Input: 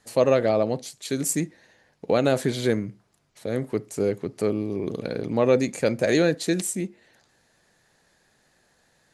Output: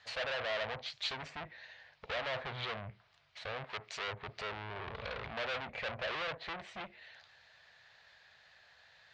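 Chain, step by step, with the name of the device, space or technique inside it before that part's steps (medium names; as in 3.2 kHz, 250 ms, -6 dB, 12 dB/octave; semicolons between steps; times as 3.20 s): low-pass that closes with the level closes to 1 kHz, closed at -20 dBFS; scooped metal amplifier (valve stage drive 36 dB, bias 0.55; cabinet simulation 83–3900 Hz, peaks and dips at 120 Hz -3 dB, 180 Hz -8 dB, 650 Hz +4 dB; amplifier tone stack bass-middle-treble 10-0-10); 3.64–4.08 s: tilt EQ +2 dB/octave; trim +12.5 dB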